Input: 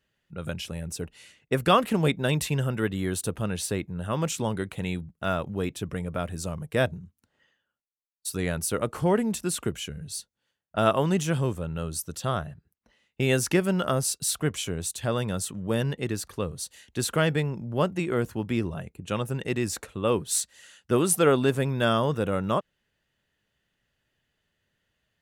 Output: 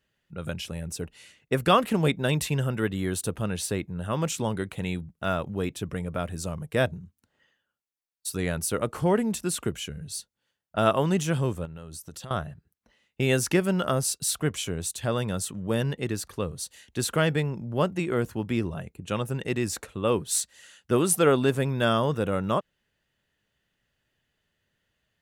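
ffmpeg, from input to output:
-filter_complex "[0:a]asettb=1/sr,asplit=3[s0][s1][s2];[s0]atrim=end=11.654[s3];[s1]atrim=start=11.65:end=12.31,asetpts=PTS-STARTPTS,afade=t=in:d=0.004:c=qsin,afade=t=out:st=0.656:d=0.004:c=qsin,acompressor=threshold=0.0158:ratio=12:attack=3.2:release=140:knee=1:detection=peak[s4];[s2]atrim=start=12.306[s5];[s3][s4]acrossfade=d=0.004:c1=hsin:c2=qsin[s6];[s6][s5]acrossfade=d=0.004:c1=qsin:c2=hsin"

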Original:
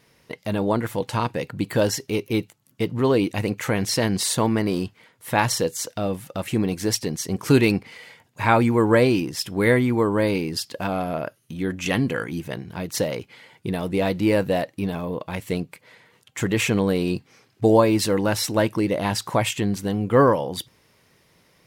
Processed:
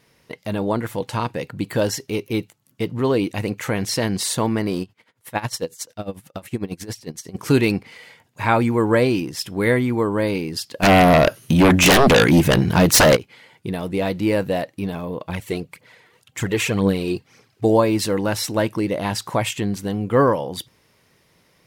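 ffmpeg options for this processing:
-filter_complex "[0:a]asettb=1/sr,asplit=3[s0][s1][s2];[s0]atrim=end=4.824[s3];[s1]atrim=start=4.82:end=7.35,asetpts=PTS-STARTPTS,afade=t=in:d=0.004:c=qsin,afade=t=out:st=2.526:d=0.004:c=qsin,aeval=exprs='val(0)*pow(10,-19*(0.5-0.5*cos(2*PI*11*n/s))/20)':c=same[s4];[s2]atrim=start=7.346[s5];[s3][s4]acrossfade=d=0.004:c1=hsin:c2=qsin[s6];[s6][s5]acrossfade=d=0.004:c1=qsin:c2=hsin,asplit=3[s7][s8][s9];[s7]afade=t=out:st=10.82:d=0.02[s10];[s8]aeval=exprs='0.376*sin(PI/2*5.62*val(0)/0.376)':c=same,afade=t=in:st=10.82:d=0.02,afade=t=out:st=13.15:d=0.02[s11];[s9]afade=t=in:st=13.15:d=0.02[s12];[s10][s11][s12]amix=inputs=3:normalize=0,asettb=1/sr,asplit=3[s13][s14][s15];[s13]atrim=end=15.294[s16];[s14]atrim=start=15.29:end=17.65,asetpts=PTS-STARTPTS,afade=t=in:d=0.004:c=qsin,afade=t=out:st=2.356:d=0.004:c=qsin,aphaser=in_gain=1:out_gain=1:delay=3:decay=0.5:speed=1.9:type=triangular[s17];[s15]atrim=start=17.646[s18];[s16][s17]acrossfade=d=0.004:c1=hsin:c2=qsin[s19];[s19][s18]acrossfade=d=0.004:c1=qsin:c2=hsin"

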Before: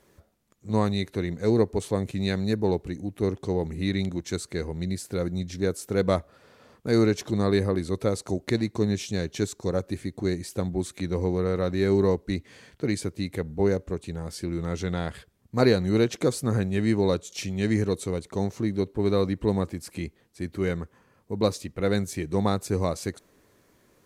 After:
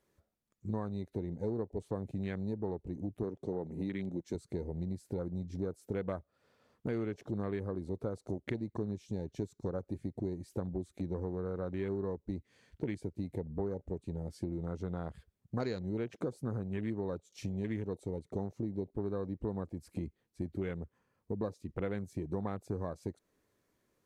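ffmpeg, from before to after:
-filter_complex "[0:a]asettb=1/sr,asplit=3[s0][s1][s2];[s0]atrim=end=3.234[s3];[s1]atrim=start=3.23:end=4.35,asetpts=PTS-STARTPTS,afade=t=in:d=0.004:c=qsin,afade=t=out:st=1.116:d=0.004:c=qsin,highpass=150[s4];[s2]atrim=start=4.346[s5];[s3][s4]acrossfade=d=0.004:c1=hsin:c2=qsin[s6];[s6][s5]acrossfade=d=0.004:c1=qsin:c2=hsin,afwtdn=0.0178,acompressor=threshold=0.0178:ratio=6,volume=1.12"

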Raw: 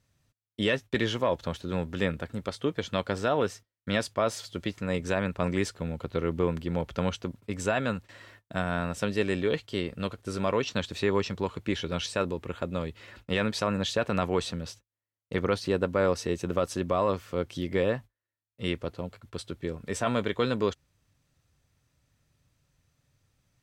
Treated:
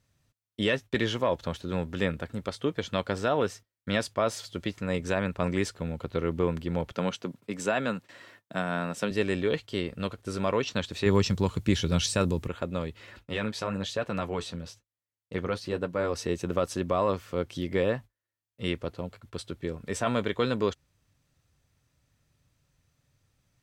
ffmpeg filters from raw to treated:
-filter_complex "[0:a]asettb=1/sr,asplit=3[s0][s1][s2];[s0]atrim=end=6.924[s3];[s1]atrim=start=6.92:end=9.11,asetpts=PTS-STARTPTS,afade=t=in:d=0.004:c=qsin,afade=t=out:st=2.186:d=0.004:c=qsin,highpass=f=140:w=0.5412,highpass=f=140:w=1.3066[s4];[s2]atrim=start=9.106[s5];[s3][s4]acrossfade=d=0.004:c1=hsin:c2=qsin[s6];[s6][s5]acrossfade=d=0.004:c1=qsin:c2=hsin,asettb=1/sr,asplit=3[s7][s8][s9];[s7]atrim=end=11.064[s10];[s8]atrim=start=11.06:end=12.48,asetpts=PTS-STARTPTS,afade=t=in:d=0.004:c=qsin,afade=t=out:st=1.416:d=0.004:c=qsin,bass=f=250:g=10,treble=f=4000:g=10[s11];[s9]atrim=start=12.476[s12];[s10][s11]acrossfade=d=0.004:c1=hsin:c2=qsin[s13];[s13][s12]acrossfade=d=0.004:c1=qsin:c2=hsin,asettb=1/sr,asplit=3[s14][s15][s16];[s14]atrim=end=13.194[s17];[s15]atrim=start=13.19:end=16.14,asetpts=PTS-STARTPTS,afade=t=in:d=0.004:c=qsin,afade=t=out:st=2.946:d=0.004:c=qsin,flanger=delay=5.7:depth=6.5:regen=-43:speed=1.1:shape=triangular[s18];[s16]atrim=start=16.136[s19];[s17][s18]acrossfade=d=0.004:c1=hsin:c2=qsin[s20];[s20][s19]acrossfade=d=0.004:c1=qsin:c2=hsin"

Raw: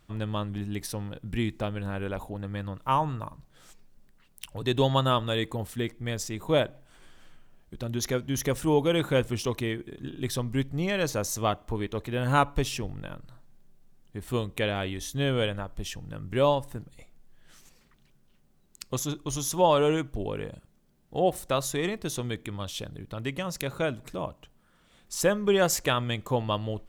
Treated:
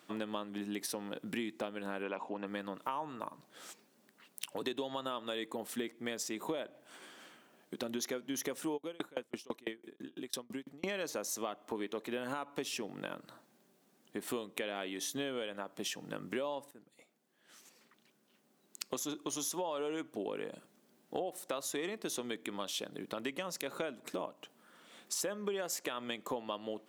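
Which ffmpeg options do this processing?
-filter_complex "[0:a]asplit=3[s0][s1][s2];[s0]afade=t=out:st=2.02:d=0.02[s3];[s1]highpass=100,equalizer=f=1000:t=q:w=4:g=7,equalizer=f=2600:t=q:w=4:g=8,equalizer=f=3800:t=q:w=4:g=-7,lowpass=f=6100:w=0.5412,lowpass=f=6100:w=1.3066,afade=t=in:st=2.02:d=0.02,afade=t=out:st=2.45:d=0.02[s4];[s2]afade=t=in:st=2.45:d=0.02[s5];[s3][s4][s5]amix=inputs=3:normalize=0,asplit=3[s6][s7][s8];[s6]afade=t=out:st=8.76:d=0.02[s9];[s7]aeval=exprs='val(0)*pow(10,-36*if(lt(mod(6*n/s,1),2*abs(6)/1000),1-mod(6*n/s,1)/(2*abs(6)/1000),(mod(6*n/s,1)-2*abs(6)/1000)/(1-2*abs(6)/1000))/20)':c=same,afade=t=in:st=8.76:d=0.02,afade=t=out:st=10.85:d=0.02[s10];[s8]afade=t=in:st=10.85:d=0.02[s11];[s9][s10][s11]amix=inputs=3:normalize=0,asplit=2[s12][s13];[s12]atrim=end=16.71,asetpts=PTS-STARTPTS,afade=t=out:st=16.706:d=0.004:c=hsin:silence=0.149624[s14];[s13]atrim=start=16.71,asetpts=PTS-STARTPTS,afade=t=in:d=2.57:silence=0.149624[s15];[s14][s15]concat=n=2:v=0:a=1,highpass=f=230:w=0.5412,highpass=f=230:w=1.3066,alimiter=limit=0.15:level=0:latency=1:release=120,acompressor=threshold=0.01:ratio=6,volume=1.68"

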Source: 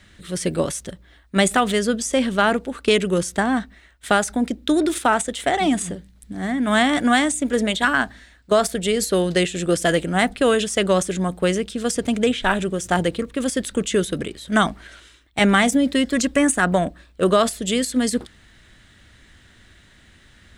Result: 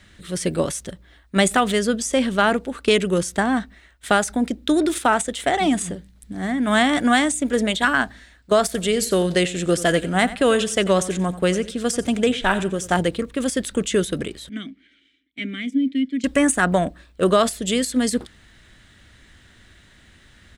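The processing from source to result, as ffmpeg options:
-filter_complex "[0:a]asplit=3[s0][s1][s2];[s0]afade=t=out:st=8.73:d=0.02[s3];[s1]aecho=1:1:89|178|267:0.158|0.0475|0.0143,afade=t=in:st=8.73:d=0.02,afade=t=out:st=12.99:d=0.02[s4];[s2]afade=t=in:st=12.99:d=0.02[s5];[s3][s4][s5]amix=inputs=3:normalize=0,asettb=1/sr,asplit=3[s6][s7][s8];[s6]atrim=end=14.494[s9];[s7]atrim=start=14.49:end=16.24,asetpts=PTS-STARTPTS,afade=t=in:d=0.004:c=qsin,afade=t=out:st=1.746:d=0.004:c=qsin,asplit=3[s10][s11][s12];[s10]bandpass=f=270:t=q:w=8,volume=1[s13];[s11]bandpass=f=2290:t=q:w=8,volume=0.501[s14];[s12]bandpass=f=3010:t=q:w=8,volume=0.355[s15];[s13][s14][s15]amix=inputs=3:normalize=0[s16];[s8]atrim=start=16.236[s17];[s9][s16]acrossfade=d=0.004:c1=hsin:c2=qsin[s18];[s18][s17]acrossfade=d=0.004:c1=qsin:c2=hsin"

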